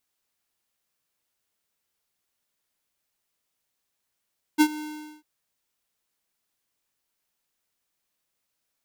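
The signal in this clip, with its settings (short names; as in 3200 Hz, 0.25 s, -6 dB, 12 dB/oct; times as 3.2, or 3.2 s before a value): ADSR square 304 Hz, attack 29 ms, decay 66 ms, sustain -19 dB, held 0.21 s, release 0.437 s -15 dBFS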